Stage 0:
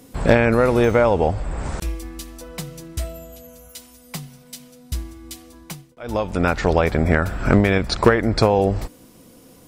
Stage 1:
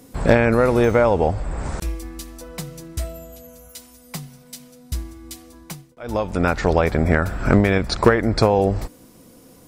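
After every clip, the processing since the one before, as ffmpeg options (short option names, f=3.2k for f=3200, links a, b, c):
-af "equalizer=f=3k:t=o:w=0.67:g=-3"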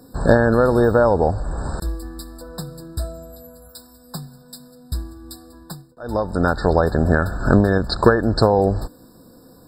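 -af "afftfilt=real='re*eq(mod(floor(b*sr/1024/1800),2),0)':imag='im*eq(mod(floor(b*sr/1024/1800),2),0)':win_size=1024:overlap=0.75,volume=1dB"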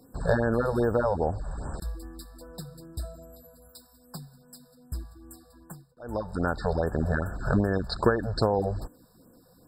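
-af "afftfilt=real='re*(1-between(b*sr/1024,250*pow(4800/250,0.5+0.5*sin(2*PI*2.5*pts/sr))/1.41,250*pow(4800/250,0.5+0.5*sin(2*PI*2.5*pts/sr))*1.41))':imag='im*(1-between(b*sr/1024,250*pow(4800/250,0.5+0.5*sin(2*PI*2.5*pts/sr))/1.41,250*pow(4800/250,0.5+0.5*sin(2*PI*2.5*pts/sr))*1.41))':win_size=1024:overlap=0.75,volume=-9dB"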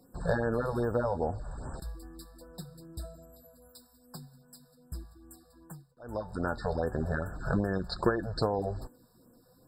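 -af "flanger=delay=5.5:depth=2.9:regen=64:speed=0.38:shape=sinusoidal"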